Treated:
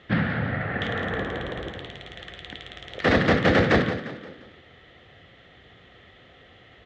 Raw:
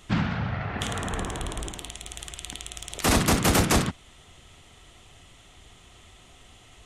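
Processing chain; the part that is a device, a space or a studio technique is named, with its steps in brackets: frequency-shifting delay pedal into a guitar cabinet (frequency-shifting echo 175 ms, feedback 44%, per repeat +38 Hz, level -11.5 dB; cabinet simulation 86–3600 Hz, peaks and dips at 510 Hz +9 dB, 970 Hz -8 dB, 1.8 kHz +9 dB, 2.6 kHz -5 dB); trim +1.5 dB

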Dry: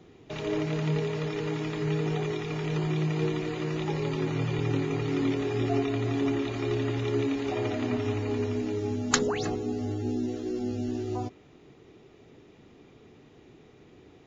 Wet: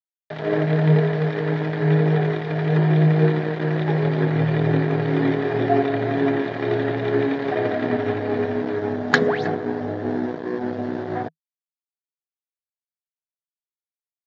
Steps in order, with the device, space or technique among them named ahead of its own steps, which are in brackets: blown loudspeaker (crossover distortion -36.5 dBFS; cabinet simulation 130–3900 Hz, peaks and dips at 160 Hz +10 dB, 470 Hz +5 dB, 670 Hz +9 dB, 1.2 kHz -3 dB, 1.7 kHz +10 dB, 2.7 kHz -8 dB); trim +7.5 dB

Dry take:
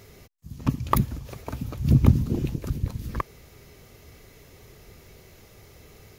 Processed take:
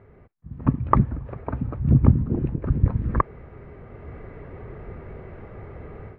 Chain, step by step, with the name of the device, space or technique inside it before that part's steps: action camera in a waterproof case (low-pass 1.7 kHz 24 dB/octave; level rider gain up to 13 dB; trim -1 dB; AAC 64 kbps 16 kHz)

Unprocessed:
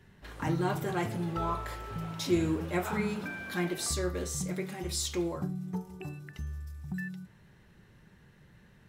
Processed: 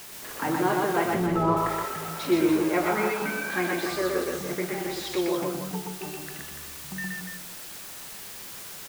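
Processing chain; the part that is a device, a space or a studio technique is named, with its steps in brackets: wax cylinder (band-pass 320–2600 Hz; wow and flutter; white noise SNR 12 dB); 1.14–1.57 s: RIAA curve playback; loudspeakers at several distances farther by 42 m -2 dB, 99 m -7 dB; trim +7 dB

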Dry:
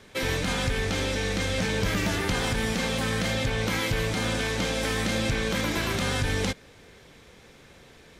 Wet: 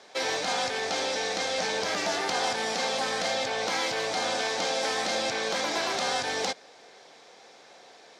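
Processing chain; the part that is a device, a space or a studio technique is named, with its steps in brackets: intercom (band-pass 420–4900 Hz; peaking EQ 740 Hz +10 dB 0.55 oct; saturation -17 dBFS, distortion -25 dB); resonant high shelf 3.8 kHz +7 dB, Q 1.5

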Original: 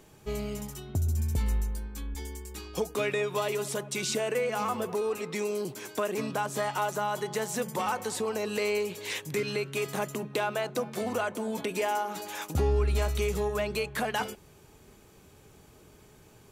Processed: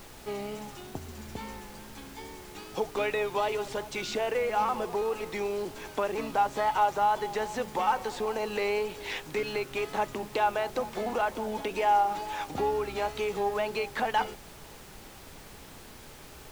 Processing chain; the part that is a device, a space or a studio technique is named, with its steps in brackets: horn gramophone (band-pass 240–4200 Hz; peaking EQ 830 Hz +8 dB 0.26 oct; wow and flutter; pink noise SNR 17 dB)

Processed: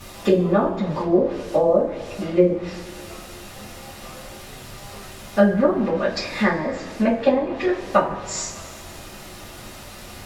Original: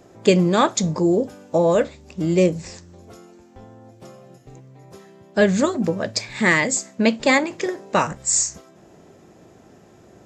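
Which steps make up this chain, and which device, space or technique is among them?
horn gramophone (band-pass 210–3900 Hz; peaking EQ 1.1 kHz +4.5 dB 0.77 oct; wow and flutter; pink noise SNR 19 dB); low-pass that closes with the level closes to 400 Hz, closed at -12 dBFS; bass shelf 150 Hz -4 dB; two-slope reverb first 0.24 s, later 1.9 s, from -18 dB, DRR -9 dB; trim -6 dB

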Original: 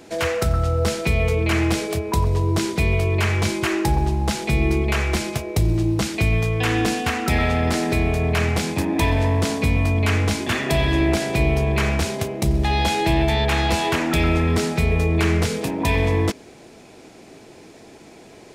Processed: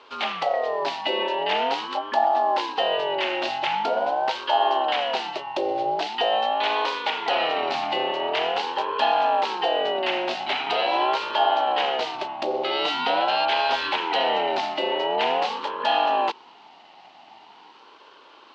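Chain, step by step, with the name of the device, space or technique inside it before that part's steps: voice changer toy (ring modulator with a swept carrier 600 Hz, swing 25%, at 0.44 Hz; cabinet simulation 490–4300 Hz, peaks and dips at 540 Hz -3 dB, 830 Hz +5 dB, 1.2 kHz -5 dB, 1.7 kHz -3 dB, 2.9 kHz +5 dB, 4.2 kHz +4 dB)

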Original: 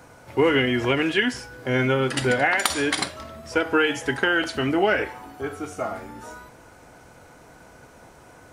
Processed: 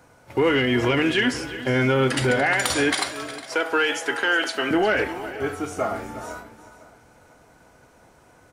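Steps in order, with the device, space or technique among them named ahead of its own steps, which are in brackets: 2.94–4.71 s: high-pass 440 Hz 12 dB/octave; gate -41 dBFS, range -9 dB; soft clipper into limiter (saturation -10 dBFS, distortion -23 dB; peak limiter -16 dBFS, peak gain reduction 5 dB); delay 360 ms -14.5 dB; feedback delay 502 ms, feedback 33%, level -18.5 dB; trim +3.5 dB

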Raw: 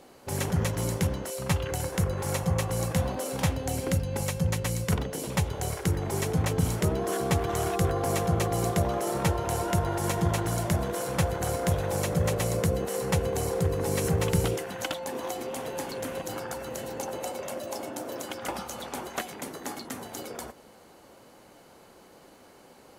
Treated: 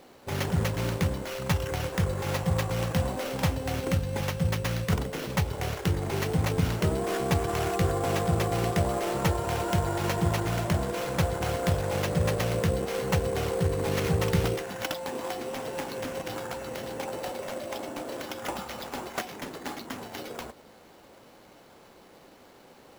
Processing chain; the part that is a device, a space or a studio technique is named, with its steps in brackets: early companding sampler (sample-rate reducer 8.5 kHz, jitter 0%; companded quantiser 6-bit)

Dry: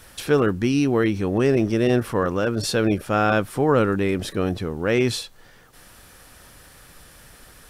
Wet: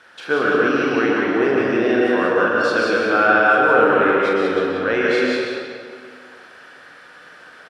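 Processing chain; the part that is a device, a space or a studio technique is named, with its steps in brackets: station announcement (band-pass 330–3600 Hz; peaking EQ 1.5 kHz +9 dB 0.35 oct; loudspeakers at several distances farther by 15 m -5 dB, 63 m -5 dB; reverberation RT60 2.2 s, pre-delay 109 ms, DRR -3 dB); trim -1 dB

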